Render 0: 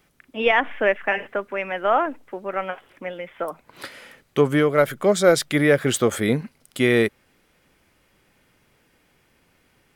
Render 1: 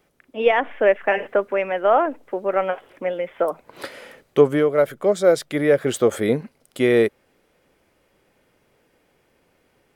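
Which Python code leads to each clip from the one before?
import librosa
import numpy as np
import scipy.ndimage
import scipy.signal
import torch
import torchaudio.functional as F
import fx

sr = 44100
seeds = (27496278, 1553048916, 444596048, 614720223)

y = fx.peak_eq(x, sr, hz=510.0, db=8.5, octaves=1.6)
y = fx.rider(y, sr, range_db=4, speed_s=0.5)
y = y * librosa.db_to_amplitude(-4.0)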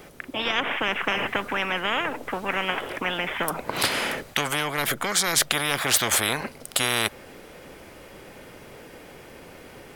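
y = fx.spectral_comp(x, sr, ratio=10.0)
y = y * librosa.db_to_amplitude(1.0)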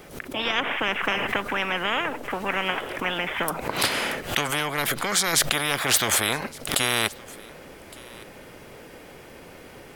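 y = fx.quant_dither(x, sr, seeds[0], bits=12, dither='none')
y = y + 10.0 ** (-22.5 / 20.0) * np.pad(y, (int(1164 * sr / 1000.0), 0))[:len(y)]
y = fx.pre_swell(y, sr, db_per_s=120.0)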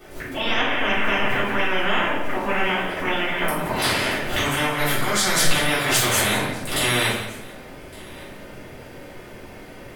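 y = x + 10.0 ** (-13.5 / 20.0) * np.pad(x, (int(175 * sr / 1000.0), 0))[:len(x)]
y = fx.room_shoebox(y, sr, seeds[1], volume_m3=180.0, walls='mixed', distance_m=3.5)
y = y * librosa.db_to_amplitude(-8.5)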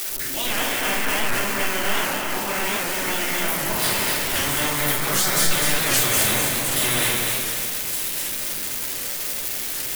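y = x + 0.5 * 10.0 ** (-13.0 / 20.0) * np.diff(np.sign(x), prepend=np.sign(x[:1]))
y = fx.echo_feedback(y, sr, ms=252, feedback_pct=48, wet_db=-4.5)
y = fx.record_warp(y, sr, rpm=78.0, depth_cents=160.0)
y = y * librosa.db_to_amplitude(-4.5)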